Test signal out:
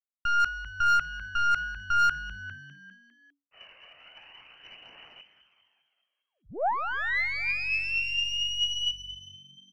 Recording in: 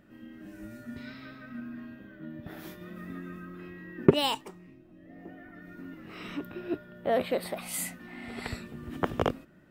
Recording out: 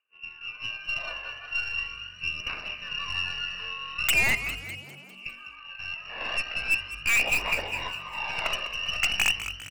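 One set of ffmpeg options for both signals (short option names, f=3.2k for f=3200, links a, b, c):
-filter_complex "[0:a]lowpass=f=2.6k:t=q:w=0.5098,lowpass=f=2.6k:t=q:w=0.6013,lowpass=f=2.6k:t=q:w=0.9,lowpass=f=2.6k:t=q:w=2.563,afreqshift=-3000,aeval=exprs='0.0944*(abs(mod(val(0)/0.0944+3,4)-2)-1)':c=same,acontrast=57,agate=range=-33dB:threshold=-35dB:ratio=3:detection=peak,aeval=exprs='0.2*(cos(1*acos(clip(val(0)/0.2,-1,1)))-cos(1*PI/2))+0.0178*(cos(5*acos(clip(val(0)/0.2,-1,1)))-cos(5*PI/2))+0.0178*(cos(8*acos(clip(val(0)/0.2,-1,1)))-cos(8*PI/2))':c=same,asplit=7[a][b][c][d][e][f][g];[b]adelay=201,afreqshift=47,volume=-12dB[h];[c]adelay=402,afreqshift=94,volume=-17.2dB[i];[d]adelay=603,afreqshift=141,volume=-22.4dB[j];[e]adelay=804,afreqshift=188,volume=-27.6dB[k];[f]adelay=1005,afreqshift=235,volume=-32.8dB[l];[g]adelay=1206,afreqshift=282,volume=-38dB[m];[a][h][i][j][k][l][m]amix=inputs=7:normalize=0,aphaser=in_gain=1:out_gain=1:delay=1.9:decay=0.38:speed=0.4:type=triangular,asoftclip=type=hard:threshold=-16dB,equalizer=f=670:t=o:w=0.65:g=4,volume=-1dB"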